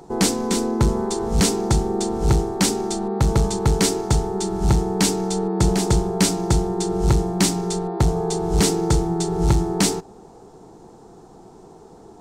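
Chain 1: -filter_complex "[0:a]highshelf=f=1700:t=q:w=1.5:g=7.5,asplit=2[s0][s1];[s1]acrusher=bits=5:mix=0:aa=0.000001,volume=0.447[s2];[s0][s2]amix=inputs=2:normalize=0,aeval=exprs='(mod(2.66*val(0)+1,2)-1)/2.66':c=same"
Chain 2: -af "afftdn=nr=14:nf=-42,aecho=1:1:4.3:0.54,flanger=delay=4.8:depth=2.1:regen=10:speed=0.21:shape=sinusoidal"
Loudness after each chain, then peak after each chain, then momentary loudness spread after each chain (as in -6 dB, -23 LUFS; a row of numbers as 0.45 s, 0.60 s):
-15.5 LUFS, -23.0 LUFS; -8.5 dBFS, -7.0 dBFS; 5 LU, 5 LU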